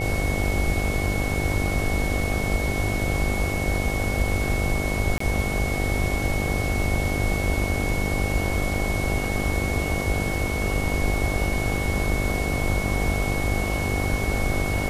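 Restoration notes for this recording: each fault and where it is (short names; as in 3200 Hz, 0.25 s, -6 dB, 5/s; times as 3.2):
buzz 50 Hz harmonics 16 -28 dBFS
tone 2200 Hz -30 dBFS
5.18–5.2 gap 24 ms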